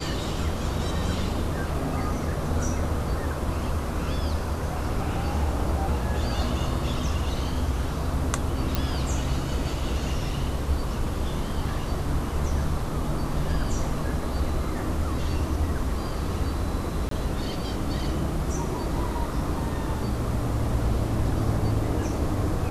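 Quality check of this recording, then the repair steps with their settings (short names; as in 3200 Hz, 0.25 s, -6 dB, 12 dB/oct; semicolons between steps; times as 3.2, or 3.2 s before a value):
8.75 pop
17.09–17.11 gap 23 ms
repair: de-click; interpolate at 17.09, 23 ms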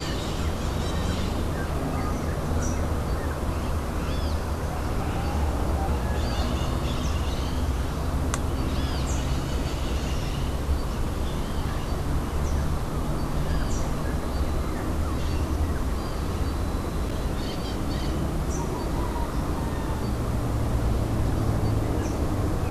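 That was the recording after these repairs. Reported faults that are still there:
none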